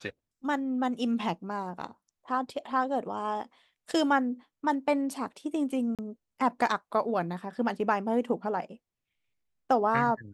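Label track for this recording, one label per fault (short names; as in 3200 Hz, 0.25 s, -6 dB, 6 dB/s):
5.950000	5.990000	gap 37 ms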